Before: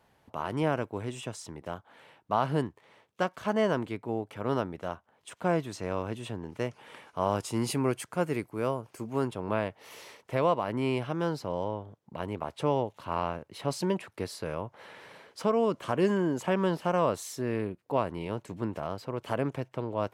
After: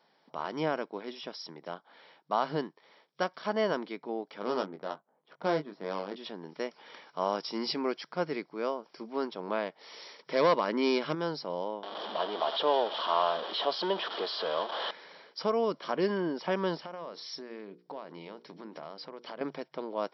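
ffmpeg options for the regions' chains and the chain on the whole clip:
-filter_complex "[0:a]asettb=1/sr,asplit=3[s0][s1][s2];[s0]atrim=end=4.404[s3];[s1]atrim=start=4.4:end=6.16,asetpts=PTS-STARTPTS,afade=t=in:d=0.004:c=qsin,afade=t=out:st=1.756:d=0.004:c=qsin,adynamicsmooth=sensitivity=4.5:basefreq=840,asplit=2[s4][s5];[s5]adelay=20,volume=0.473[s6];[s4][s6]amix=inputs=2:normalize=0,atrim=end_sample=77616[s7];[s2]atrim=start=6.156[s8];[s3][s7]acrossfade=d=0.004:c1=hsin:c2=qsin[s9];[s9][s8]acrossfade=d=0.004:c1=qsin:c2=hsin,asettb=1/sr,asplit=3[s10][s11][s12];[s10]atrim=end=10.194[s13];[s11]atrim=start=10.19:end=11.15,asetpts=PTS-STARTPTS,afade=t=in:d=0.004:c=qsin,afade=t=out:st=0.956:d=0.004:c=qsin,equalizer=f=740:w=4.1:g=-8.5,acontrast=59,volume=5.96,asoftclip=hard,volume=0.168[s14];[s12]atrim=start=11.146[s15];[s13][s14]acrossfade=d=0.004:c1=hsin:c2=qsin[s16];[s16][s15]acrossfade=d=0.004:c1=qsin:c2=hsin,asettb=1/sr,asplit=3[s17][s18][s19];[s17]atrim=end=11.834[s20];[s18]atrim=start=11.83:end=14.91,asetpts=PTS-STARTPTS,afade=t=in:d=0.004:c=qsin,afade=t=out:st=3.076:d=0.004:c=qsin,aeval=exprs='val(0)+0.5*0.0316*sgn(val(0))':c=same,highpass=f=240:w=0.5412,highpass=f=240:w=1.3066,equalizer=f=270:t=q:w=4:g=-7,equalizer=f=680:t=q:w=4:g=6,equalizer=f=1100:t=q:w=4:g=5,equalizer=f=2200:t=q:w=4:g=-10,equalizer=f=3200:t=q:w=4:g=10,lowpass=f=3700:w=0.5412,lowpass=f=3700:w=1.3066[s21];[s19]atrim=start=14.906[s22];[s20][s21]acrossfade=d=0.004:c1=hsin:c2=qsin[s23];[s23][s22]acrossfade=d=0.004:c1=qsin:c2=hsin,asettb=1/sr,asplit=3[s24][s25][s26];[s24]atrim=end=16.824[s27];[s25]atrim=start=16.82:end=19.41,asetpts=PTS-STARTPTS,afade=t=in:d=0.004:c=qsin,afade=t=out:st=2.586:d=0.004:c=qsin,acompressor=threshold=0.0178:ratio=5:attack=3.2:release=140:knee=1:detection=peak,bandreject=f=60:t=h:w=6,bandreject=f=120:t=h:w=6,bandreject=f=180:t=h:w=6,bandreject=f=240:t=h:w=6,bandreject=f=300:t=h:w=6,bandreject=f=360:t=h:w=6,bandreject=f=420:t=h:w=6,bandreject=f=480:t=h:w=6[s28];[s26]atrim=start=19.406[s29];[s27][s28]acrossfade=d=0.004:c1=hsin:c2=qsin[s30];[s30][s29]acrossfade=d=0.004:c1=qsin:c2=hsin,afftfilt=real='re*between(b*sr/4096,140,5700)':imag='im*between(b*sr/4096,140,5700)':win_size=4096:overlap=0.75,bass=f=250:g=-7,treble=f=4000:g=12,bandreject=f=2700:w=8.3,volume=0.841"

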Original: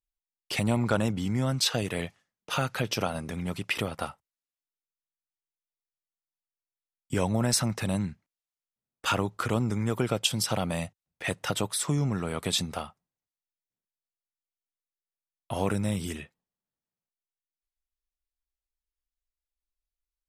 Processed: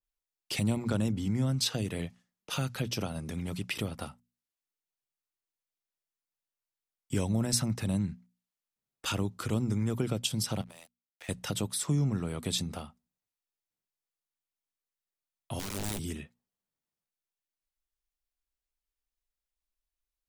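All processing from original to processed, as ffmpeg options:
-filter_complex "[0:a]asettb=1/sr,asplit=3[s0][s1][s2];[s0]atrim=end=10.614[s3];[s1]atrim=start=10.61:end=11.29,asetpts=PTS-STARTPTS,afade=t=in:d=0.004:c=qsin,afade=t=out:st=0.676:d=0.004:c=qsin,highpass=540,acompressor=threshold=0.0112:ratio=12:attack=3.2:release=140:knee=1:detection=peak,aeval=exprs='sgn(val(0))*max(abs(val(0))-0.00299,0)':c=same[s4];[s2]atrim=start=11.286[s5];[s3][s4]acrossfade=d=0.004:c1=hsin:c2=qsin[s6];[s6][s5]acrossfade=d=0.004:c1=qsin:c2=hsin,asettb=1/sr,asplit=3[s7][s8][s9];[s7]atrim=end=15.594[s10];[s8]atrim=start=15.59:end=15.99,asetpts=PTS-STARTPTS,afade=t=in:d=0.004:c=qsin,afade=t=out:st=0.396:d=0.004:c=qsin,highpass=f=77:w=0.5412,highpass=f=77:w=1.3066,acrusher=bits=3:dc=4:mix=0:aa=0.000001,aeval=exprs='(mod(15*val(0)+1,2)-1)/15':c=same[s11];[s9]atrim=start=15.986[s12];[s10][s11]acrossfade=d=0.004:c1=hsin:c2=qsin[s13];[s13][s12]acrossfade=d=0.004:c1=qsin:c2=hsin,acrossover=split=360|3000[s14][s15][s16];[s15]acompressor=threshold=0.00126:ratio=1.5[s17];[s14][s17][s16]amix=inputs=3:normalize=0,bandreject=f=60:t=h:w=6,bandreject=f=120:t=h:w=6,bandreject=f=180:t=h:w=6,bandreject=f=240:t=h:w=6,adynamicequalizer=threshold=0.00398:dfrequency=2200:dqfactor=0.7:tfrequency=2200:tqfactor=0.7:attack=5:release=100:ratio=0.375:range=2.5:mode=cutabove:tftype=highshelf"

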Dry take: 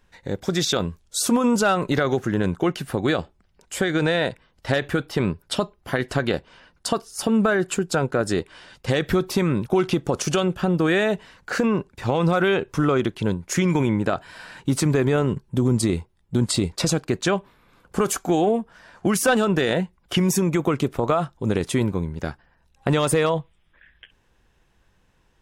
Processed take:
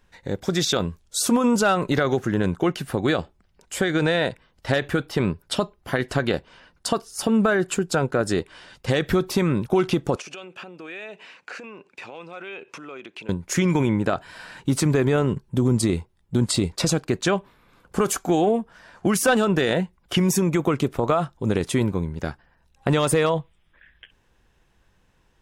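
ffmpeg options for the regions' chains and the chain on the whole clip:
-filter_complex "[0:a]asettb=1/sr,asplit=3[s0][s1][s2];[s0]atrim=end=10.164[s3];[s1]atrim=start=10.16:end=13.29,asetpts=PTS-STARTPTS,afade=t=in:d=0.004:c=qsin,afade=t=out:st=3.126:d=0.004:c=qsin,equalizer=f=2500:t=o:w=0.31:g=13,acompressor=threshold=0.0224:ratio=8:attack=3.2:release=140:knee=1:detection=peak,highpass=320,lowpass=7700[s4];[s2]atrim=start=13.286[s5];[s3][s4]acrossfade=d=0.004:c1=hsin:c2=qsin[s6];[s6][s5]acrossfade=d=0.004:c1=qsin:c2=hsin"

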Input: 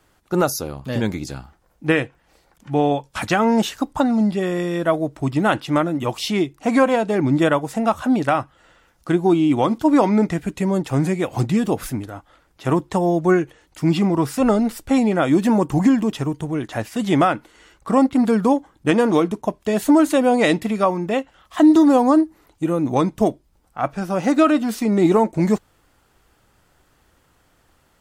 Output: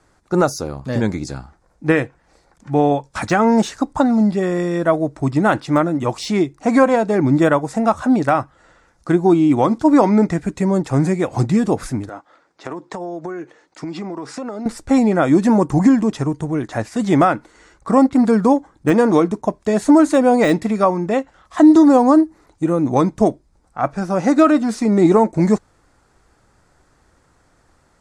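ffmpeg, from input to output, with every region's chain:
-filter_complex "[0:a]asettb=1/sr,asplit=3[s0][s1][s2];[s0]atrim=end=12.094[s3];[s1]atrim=start=12.09:end=14.66,asetpts=PTS-STARTPTS,afade=t=in:d=0.004:c=qsin,afade=t=out:st=2.566:d=0.004:c=qsin,highpass=270,lowpass=6200,acompressor=threshold=0.0501:ratio=16:attack=3.2:release=140:knee=1:detection=peak[s4];[s2]atrim=start=14.656[s5];[s3][s4]acrossfade=d=0.004:c1=hsin:c2=qsin[s6];[s6][s5]acrossfade=d=0.004:c1=qsin:c2=hsin,lowpass=f=9100:w=0.5412,lowpass=f=9100:w=1.3066,deesser=0.55,equalizer=f=3000:t=o:w=0.57:g=-10,volume=1.41"

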